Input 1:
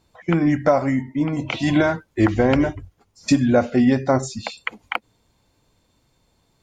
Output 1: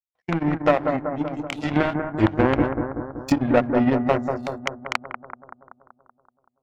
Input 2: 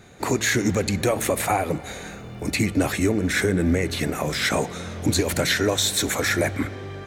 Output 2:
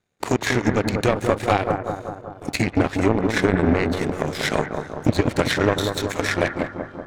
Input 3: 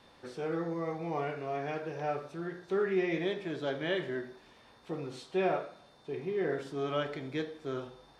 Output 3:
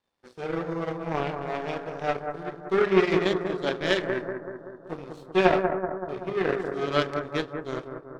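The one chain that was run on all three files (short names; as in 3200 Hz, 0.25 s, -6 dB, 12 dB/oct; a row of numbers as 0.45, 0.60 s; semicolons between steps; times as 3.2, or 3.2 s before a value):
de-hum 68.55 Hz, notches 5; treble ducked by the level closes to 2000 Hz, closed at -14.5 dBFS; power-law curve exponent 2; analogue delay 0.19 s, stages 2048, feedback 61%, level -6 dB; normalise peaks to -2 dBFS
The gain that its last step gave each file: +3.5, +7.5, +15.5 dB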